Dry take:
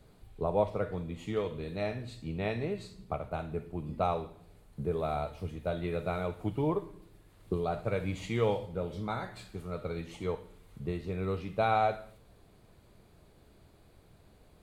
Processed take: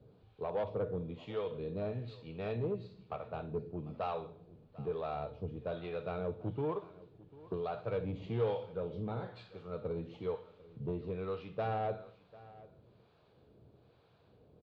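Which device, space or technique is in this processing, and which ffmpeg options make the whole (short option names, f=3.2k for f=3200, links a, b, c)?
guitar amplifier with harmonic tremolo: -filter_complex "[0:a]acrossover=split=650[a][b];[a]aeval=exprs='val(0)*(1-0.7/2+0.7/2*cos(2*PI*1.1*n/s))':c=same[c];[b]aeval=exprs='val(0)*(1-0.7/2-0.7/2*cos(2*PI*1.1*n/s))':c=same[d];[c][d]amix=inputs=2:normalize=0,asoftclip=type=tanh:threshold=-30dB,highpass=86,equalizer=f=120:t=q:w=4:g=6,equalizer=f=470:t=q:w=4:g=7,equalizer=f=2k:t=q:w=4:g=-8,lowpass=f=4.1k:w=0.5412,lowpass=f=4.1k:w=1.3066,aecho=1:1:746:0.1,volume=-1dB"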